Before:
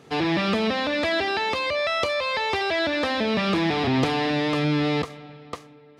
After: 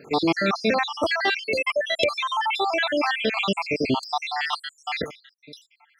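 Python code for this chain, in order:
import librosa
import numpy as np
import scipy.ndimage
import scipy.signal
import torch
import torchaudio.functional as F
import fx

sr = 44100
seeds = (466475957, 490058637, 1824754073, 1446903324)

y = fx.spec_dropout(x, sr, seeds[0], share_pct=73)
y = fx.low_shelf(y, sr, hz=180.0, db=-12.0)
y = y * 10.0 ** (7.0 / 20.0)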